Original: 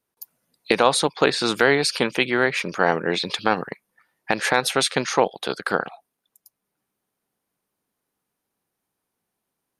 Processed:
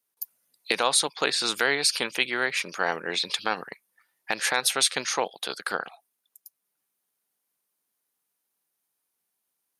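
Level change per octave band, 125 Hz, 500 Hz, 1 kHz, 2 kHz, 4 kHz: -14.5, -9.5, -6.5, -4.0, -0.5 dB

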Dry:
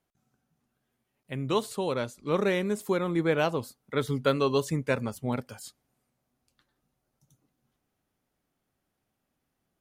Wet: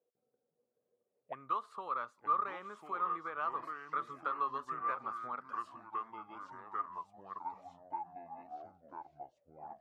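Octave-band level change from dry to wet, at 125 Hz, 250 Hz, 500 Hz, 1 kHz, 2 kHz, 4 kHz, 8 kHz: -29.5 dB, -23.5 dB, -20.0 dB, +1.0 dB, -10.5 dB, under -20 dB, under -25 dB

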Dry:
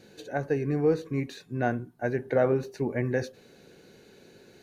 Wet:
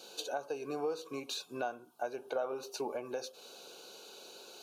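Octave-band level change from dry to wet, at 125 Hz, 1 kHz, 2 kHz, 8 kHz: -27.0 dB, -5.0 dB, -10.5 dB, n/a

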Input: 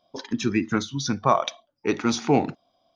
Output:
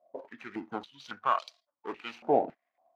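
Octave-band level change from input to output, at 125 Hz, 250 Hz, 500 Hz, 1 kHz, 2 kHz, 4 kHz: -22.5, -16.0, -6.0, -5.5, -10.0, -14.5 dB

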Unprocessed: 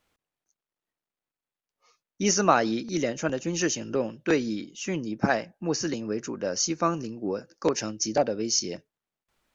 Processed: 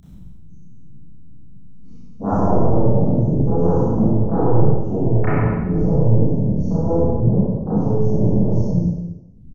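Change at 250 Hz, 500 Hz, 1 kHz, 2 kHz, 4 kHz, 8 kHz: +10.5 dB, +7.0 dB, +3.0 dB, -6.0 dB, under -25 dB, n/a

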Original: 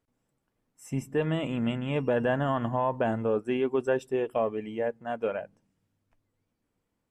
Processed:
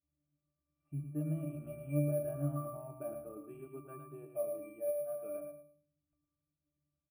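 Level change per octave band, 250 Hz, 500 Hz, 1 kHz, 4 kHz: -11.0 dB, -11.0 dB, -20.0 dB, under -35 dB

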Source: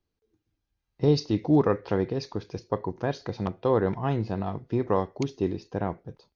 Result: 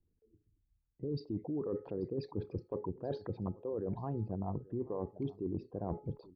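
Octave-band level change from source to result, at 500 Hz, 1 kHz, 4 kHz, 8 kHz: -12.0 dB, -15.0 dB, -19.0 dB, n/a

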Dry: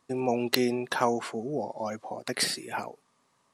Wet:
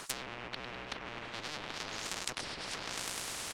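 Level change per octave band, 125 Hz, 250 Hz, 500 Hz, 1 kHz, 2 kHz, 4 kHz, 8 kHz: -10.0, -18.5, -17.0, -11.0, -5.0, -5.5, -3.0 dB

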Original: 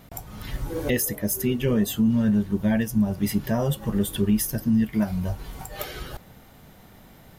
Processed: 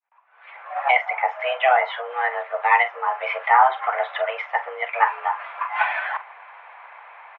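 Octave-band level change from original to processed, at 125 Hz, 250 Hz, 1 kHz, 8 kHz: under -40 dB, under -40 dB, +21.5 dB, under -40 dB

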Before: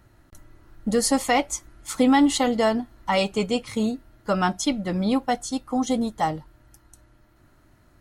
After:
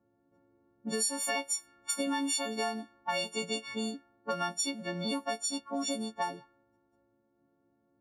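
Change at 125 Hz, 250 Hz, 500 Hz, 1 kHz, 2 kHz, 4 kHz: -14.5, -14.0, -12.0, -11.5, -7.5, -5.0 dB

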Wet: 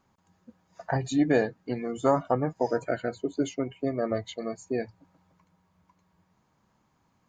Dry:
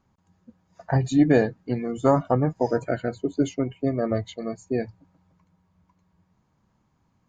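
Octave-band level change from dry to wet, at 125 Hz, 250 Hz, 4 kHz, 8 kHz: -8.5 dB, -5.5 dB, -0.5 dB, n/a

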